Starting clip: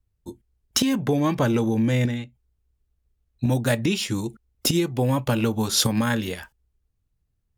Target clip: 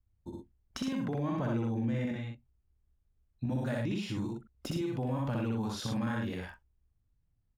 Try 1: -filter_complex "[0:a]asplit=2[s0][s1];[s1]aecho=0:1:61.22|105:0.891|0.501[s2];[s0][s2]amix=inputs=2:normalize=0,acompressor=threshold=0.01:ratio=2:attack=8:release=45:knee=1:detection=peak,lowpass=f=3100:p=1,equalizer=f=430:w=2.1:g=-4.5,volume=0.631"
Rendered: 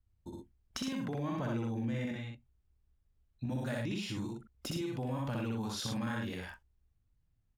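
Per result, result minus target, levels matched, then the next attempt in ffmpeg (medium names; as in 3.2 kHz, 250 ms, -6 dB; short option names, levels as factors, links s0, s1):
4 kHz band +4.5 dB; compression: peak gain reduction +3.5 dB
-filter_complex "[0:a]asplit=2[s0][s1];[s1]aecho=0:1:61.22|105:0.891|0.501[s2];[s0][s2]amix=inputs=2:normalize=0,acompressor=threshold=0.01:ratio=2:attack=8:release=45:knee=1:detection=peak,lowpass=f=1400:p=1,equalizer=f=430:w=2.1:g=-4.5,volume=0.631"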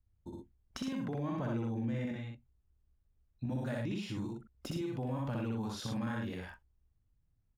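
compression: peak gain reduction +3.5 dB
-filter_complex "[0:a]asplit=2[s0][s1];[s1]aecho=0:1:61.22|105:0.891|0.501[s2];[s0][s2]amix=inputs=2:normalize=0,acompressor=threshold=0.0224:ratio=2:attack=8:release=45:knee=1:detection=peak,lowpass=f=1400:p=1,equalizer=f=430:w=2.1:g=-4.5,volume=0.631"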